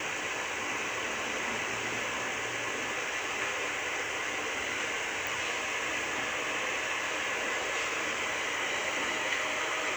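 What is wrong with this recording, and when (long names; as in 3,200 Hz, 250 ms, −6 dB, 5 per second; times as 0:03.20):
0:05.27: click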